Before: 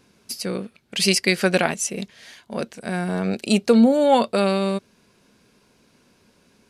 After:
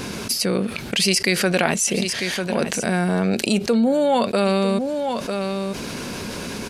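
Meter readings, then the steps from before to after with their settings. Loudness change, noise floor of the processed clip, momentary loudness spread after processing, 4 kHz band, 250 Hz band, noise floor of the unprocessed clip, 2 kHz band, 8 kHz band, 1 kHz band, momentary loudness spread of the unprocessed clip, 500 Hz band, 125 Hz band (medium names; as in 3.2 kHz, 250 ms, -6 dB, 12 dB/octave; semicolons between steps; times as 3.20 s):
-0.5 dB, -31 dBFS, 10 LU, +3.0 dB, +0.5 dB, -60 dBFS, +2.5 dB, +4.5 dB, +0.5 dB, 16 LU, +1.0 dB, +3.0 dB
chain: delay 946 ms -19.5 dB; level flattener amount 70%; trim -5 dB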